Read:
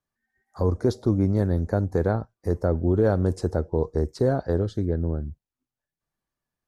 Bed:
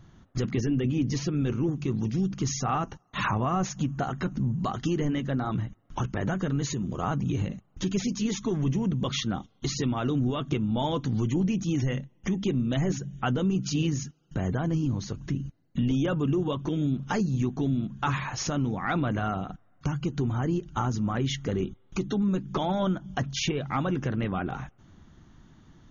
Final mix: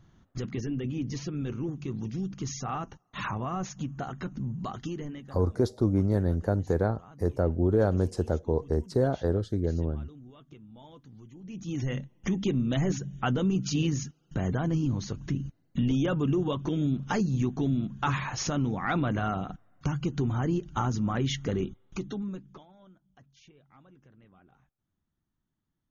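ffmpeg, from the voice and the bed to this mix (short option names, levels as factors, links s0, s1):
-filter_complex "[0:a]adelay=4750,volume=0.708[s0];[1:a]volume=6.68,afade=t=out:st=4.74:d=0.68:silence=0.141254,afade=t=in:st=11.42:d=0.65:silence=0.0749894,afade=t=out:st=21.5:d=1.15:silence=0.0354813[s1];[s0][s1]amix=inputs=2:normalize=0"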